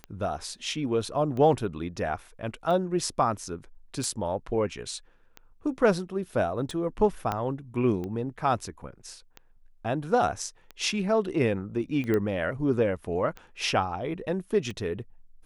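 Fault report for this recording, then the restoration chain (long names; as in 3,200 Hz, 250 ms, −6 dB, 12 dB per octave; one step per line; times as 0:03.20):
scratch tick 45 rpm −24 dBFS
0:07.32: click −15 dBFS
0:12.14: click −16 dBFS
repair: click removal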